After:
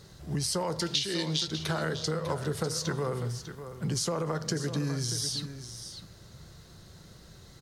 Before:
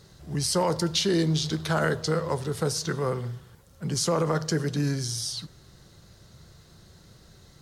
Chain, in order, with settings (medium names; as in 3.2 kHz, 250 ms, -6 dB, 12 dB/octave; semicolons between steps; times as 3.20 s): 0.80–1.48 s: frequency weighting D; compression 10:1, threshold -28 dBFS, peak gain reduction 17.5 dB; delay 598 ms -11 dB; trim +1 dB